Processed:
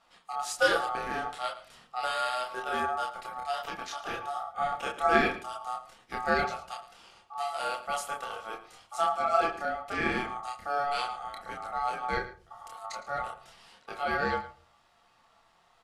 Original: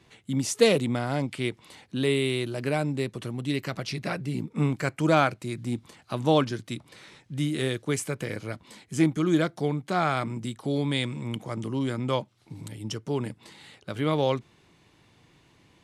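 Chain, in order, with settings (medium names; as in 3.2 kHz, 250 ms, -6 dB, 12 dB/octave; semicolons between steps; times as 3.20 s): chorus voices 4, 0.13 Hz, delay 28 ms, depth 4.4 ms; ring modulator 1 kHz; echo from a far wall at 19 m, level -15 dB; on a send at -7 dB: reverberation RT60 0.40 s, pre-delay 4 ms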